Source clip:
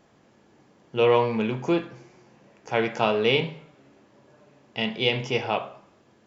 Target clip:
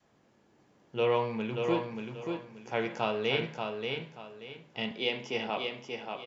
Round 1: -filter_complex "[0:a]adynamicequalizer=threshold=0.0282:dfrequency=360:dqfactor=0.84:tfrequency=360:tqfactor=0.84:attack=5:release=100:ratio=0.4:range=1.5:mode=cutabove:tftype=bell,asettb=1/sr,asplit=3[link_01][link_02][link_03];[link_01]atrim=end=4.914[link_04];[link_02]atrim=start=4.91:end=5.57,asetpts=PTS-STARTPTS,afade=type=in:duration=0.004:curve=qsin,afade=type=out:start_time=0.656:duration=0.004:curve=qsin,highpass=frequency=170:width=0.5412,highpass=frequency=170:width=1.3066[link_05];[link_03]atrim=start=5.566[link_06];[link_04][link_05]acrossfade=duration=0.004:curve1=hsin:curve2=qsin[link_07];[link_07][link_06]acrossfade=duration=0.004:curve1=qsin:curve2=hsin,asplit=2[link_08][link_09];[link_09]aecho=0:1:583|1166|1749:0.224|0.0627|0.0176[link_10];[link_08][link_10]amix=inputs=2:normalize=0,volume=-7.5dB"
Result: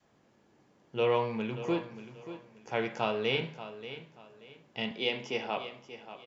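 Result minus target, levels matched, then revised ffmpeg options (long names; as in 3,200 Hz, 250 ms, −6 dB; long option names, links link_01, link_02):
echo-to-direct −8 dB
-filter_complex "[0:a]adynamicequalizer=threshold=0.0282:dfrequency=360:dqfactor=0.84:tfrequency=360:tqfactor=0.84:attack=5:release=100:ratio=0.4:range=1.5:mode=cutabove:tftype=bell,asettb=1/sr,asplit=3[link_01][link_02][link_03];[link_01]atrim=end=4.914[link_04];[link_02]atrim=start=4.91:end=5.57,asetpts=PTS-STARTPTS,afade=type=in:duration=0.004:curve=qsin,afade=type=out:start_time=0.656:duration=0.004:curve=qsin,highpass=frequency=170:width=0.5412,highpass=frequency=170:width=1.3066[link_05];[link_03]atrim=start=5.566[link_06];[link_04][link_05]acrossfade=duration=0.004:curve1=hsin:curve2=qsin[link_07];[link_07][link_06]acrossfade=duration=0.004:curve1=qsin:curve2=hsin,asplit=2[link_08][link_09];[link_09]aecho=0:1:583|1166|1749|2332:0.562|0.157|0.0441|0.0123[link_10];[link_08][link_10]amix=inputs=2:normalize=0,volume=-7.5dB"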